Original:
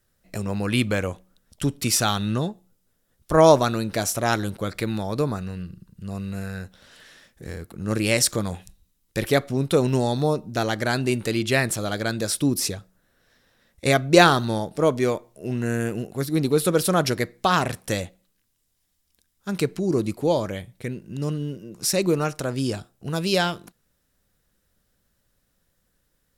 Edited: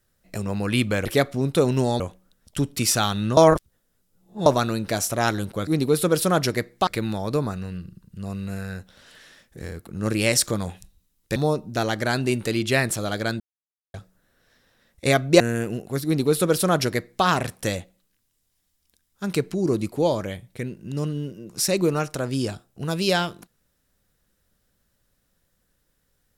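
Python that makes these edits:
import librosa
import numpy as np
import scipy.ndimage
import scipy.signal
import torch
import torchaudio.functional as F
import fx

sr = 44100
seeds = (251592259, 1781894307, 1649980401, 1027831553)

y = fx.edit(x, sr, fx.reverse_span(start_s=2.42, length_s=1.09),
    fx.move(start_s=9.21, length_s=0.95, to_s=1.05),
    fx.silence(start_s=12.2, length_s=0.54),
    fx.cut(start_s=14.2, length_s=1.45),
    fx.duplicate(start_s=16.3, length_s=1.2, to_s=4.72), tone=tone)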